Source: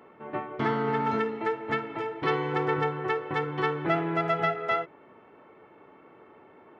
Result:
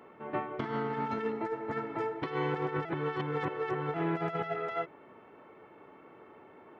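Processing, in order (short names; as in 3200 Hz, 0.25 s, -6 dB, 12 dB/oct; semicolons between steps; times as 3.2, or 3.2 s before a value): negative-ratio compressor -29 dBFS, ratio -0.5; 1.32–2.22 bell 3000 Hz -9 dB 0.87 oct; 2.85–3.94 reverse; gain -3 dB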